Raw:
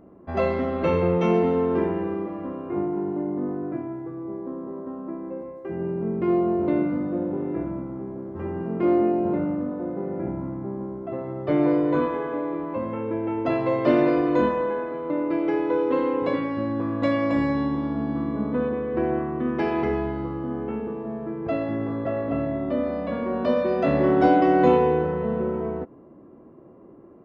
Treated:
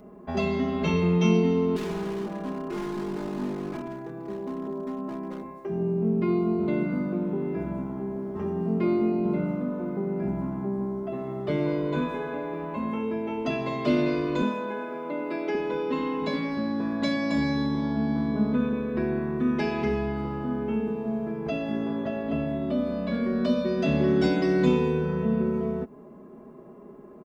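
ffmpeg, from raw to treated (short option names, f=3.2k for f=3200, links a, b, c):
-filter_complex "[0:a]asettb=1/sr,asplit=3[a][b][c];[a]atrim=end=1.764[d];[b]atrim=start=1.76:end=5.6,asetpts=PTS-STARTPTS,afade=t=in:d=0.004:c=qsin,afade=t=out:st=3.836:d=0.004:c=qsin,volume=28dB,asoftclip=hard,volume=-28dB[e];[c]atrim=start=5.596[f];[d][e]acrossfade=d=0.004:c1=hsin:c2=qsin[g];[g][f]acrossfade=d=0.004:c1=qsin:c2=hsin,asettb=1/sr,asplit=3[h][i][j];[h]atrim=end=14.424[k];[i]atrim=start=14.42:end=15.55,asetpts=PTS-STARTPTS,afade=t=in:d=0.004:c=qsin,afade=t=out:st=1.126:d=0.004:c=qsin,highpass=f=210:w=0.5412,highpass=f=210:w=1.3066[l];[j]atrim=start=15.546[m];[k][l]acrossfade=d=0.004:c1=hsin:c2=qsin[n];[n][m]acrossfade=d=0.004:c1=qsin:c2=hsin,highshelf=f=2.7k:g=9.5,aecho=1:1:4.8:0.86,acrossover=split=310|3000[o][p][q];[p]acompressor=threshold=-36dB:ratio=2.5[r];[o][r][q]amix=inputs=3:normalize=0"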